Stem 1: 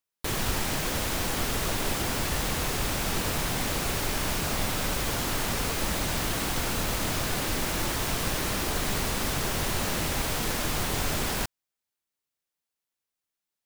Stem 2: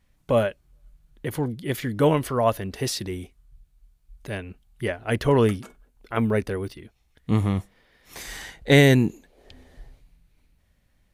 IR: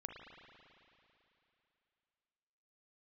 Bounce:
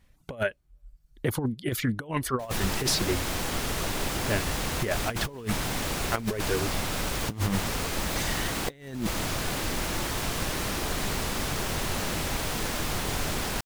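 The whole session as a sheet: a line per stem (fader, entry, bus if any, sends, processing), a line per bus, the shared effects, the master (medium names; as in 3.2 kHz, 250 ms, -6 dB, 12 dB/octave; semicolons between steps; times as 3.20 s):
-4.0 dB, 2.15 s, no send, none
+1.0 dB, 0.00 s, no send, reverb removal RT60 1.2 s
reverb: none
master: compressor with a negative ratio -26 dBFS, ratio -0.5; loudspeaker Doppler distortion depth 0.17 ms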